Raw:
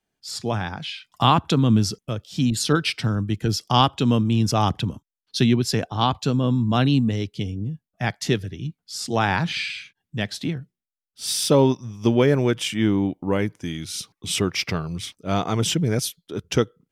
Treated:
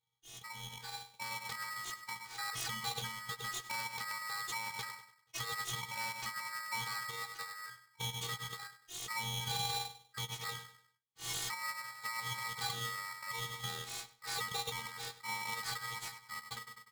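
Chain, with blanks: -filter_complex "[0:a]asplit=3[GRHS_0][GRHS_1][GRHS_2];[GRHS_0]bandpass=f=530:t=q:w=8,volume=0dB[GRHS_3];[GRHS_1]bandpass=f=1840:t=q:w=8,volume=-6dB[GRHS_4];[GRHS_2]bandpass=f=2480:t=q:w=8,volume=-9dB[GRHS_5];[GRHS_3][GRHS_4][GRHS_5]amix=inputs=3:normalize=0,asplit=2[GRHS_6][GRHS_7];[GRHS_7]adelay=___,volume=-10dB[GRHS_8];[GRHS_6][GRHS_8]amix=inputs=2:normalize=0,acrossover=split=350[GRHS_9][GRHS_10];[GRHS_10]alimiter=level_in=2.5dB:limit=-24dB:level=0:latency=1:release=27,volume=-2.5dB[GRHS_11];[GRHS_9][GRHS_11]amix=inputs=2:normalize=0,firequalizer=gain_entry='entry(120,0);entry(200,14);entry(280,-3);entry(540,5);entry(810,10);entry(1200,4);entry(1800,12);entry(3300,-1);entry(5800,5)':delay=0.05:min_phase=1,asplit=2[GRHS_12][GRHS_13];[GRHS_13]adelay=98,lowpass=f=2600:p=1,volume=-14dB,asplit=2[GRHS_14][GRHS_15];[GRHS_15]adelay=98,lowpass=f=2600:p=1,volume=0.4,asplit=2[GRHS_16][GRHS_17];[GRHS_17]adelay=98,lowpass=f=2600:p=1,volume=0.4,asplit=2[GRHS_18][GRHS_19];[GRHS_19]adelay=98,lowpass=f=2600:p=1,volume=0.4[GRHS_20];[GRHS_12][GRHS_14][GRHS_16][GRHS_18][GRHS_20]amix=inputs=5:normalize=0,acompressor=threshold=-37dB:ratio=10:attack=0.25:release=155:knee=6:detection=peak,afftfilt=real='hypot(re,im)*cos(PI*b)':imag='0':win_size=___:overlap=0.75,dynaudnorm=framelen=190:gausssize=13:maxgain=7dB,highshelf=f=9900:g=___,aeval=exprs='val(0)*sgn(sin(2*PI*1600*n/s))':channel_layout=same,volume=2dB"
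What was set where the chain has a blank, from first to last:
15, 512, 11.5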